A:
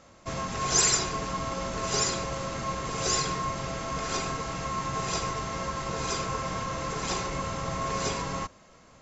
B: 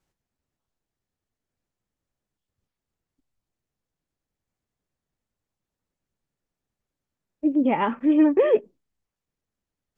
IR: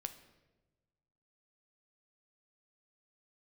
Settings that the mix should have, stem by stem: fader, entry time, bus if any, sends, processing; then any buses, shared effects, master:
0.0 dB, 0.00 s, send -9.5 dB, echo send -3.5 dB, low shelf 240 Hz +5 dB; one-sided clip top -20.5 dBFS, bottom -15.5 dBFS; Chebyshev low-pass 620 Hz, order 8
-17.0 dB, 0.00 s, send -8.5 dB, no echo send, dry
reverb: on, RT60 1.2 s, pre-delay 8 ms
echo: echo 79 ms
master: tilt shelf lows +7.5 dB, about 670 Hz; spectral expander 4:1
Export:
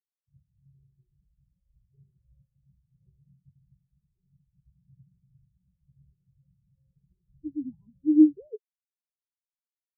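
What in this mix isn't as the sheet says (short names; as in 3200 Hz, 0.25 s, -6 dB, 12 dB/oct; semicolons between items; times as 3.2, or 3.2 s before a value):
stem A: send off; stem B -17.0 dB -> -6.5 dB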